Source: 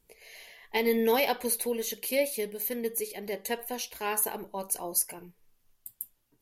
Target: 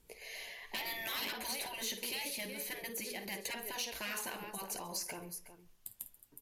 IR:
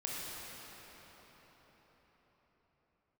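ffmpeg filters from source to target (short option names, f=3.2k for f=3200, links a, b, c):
-filter_complex "[0:a]asplit=2[a][b];[b]aecho=0:1:52|365:0.2|0.141[c];[a][c]amix=inputs=2:normalize=0,afftfilt=real='re*lt(hypot(re,im),0.0794)':imag='im*lt(hypot(re,im),0.0794)':win_size=1024:overlap=0.75,asplit=2[d][e];[e]aecho=0:1:134:0.0708[f];[d][f]amix=inputs=2:normalize=0,aeval=exprs='0.0631*(abs(mod(val(0)/0.0631+3,4)-2)-1)':c=same,aemphasis=mode=reproduction:type=50fm,acrossover=split=1400|5600[g][h][i];[g]acompressor=threshold=-46dB:ratio=4[j];[h]acompressor=threshold=-42dB:ratio=4[k];[i]acompressor=threshold=-56dB:ratio=4[l];[j][k][l]amix=inputs=3:normalize=0,asoftclip=type=tanh:threshold=-36dB,crystalizer=i=2:c=0,volume=2.5dB"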